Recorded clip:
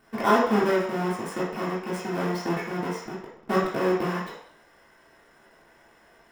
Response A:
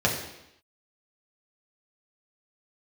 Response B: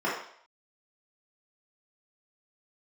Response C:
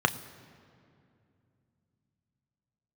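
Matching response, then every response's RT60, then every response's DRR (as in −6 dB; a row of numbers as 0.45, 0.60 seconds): B; 0.85, 0.60, 2.5 seconds; −3.0, −8.5, 9.0 decibels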